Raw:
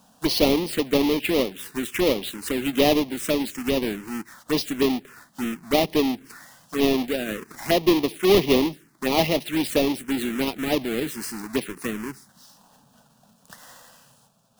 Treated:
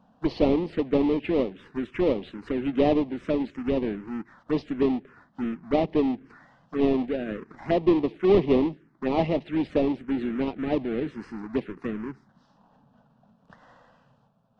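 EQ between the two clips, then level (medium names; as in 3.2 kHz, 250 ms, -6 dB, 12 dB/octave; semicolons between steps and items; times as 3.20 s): tape spacing loss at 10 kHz 44 dB; 0.0 dB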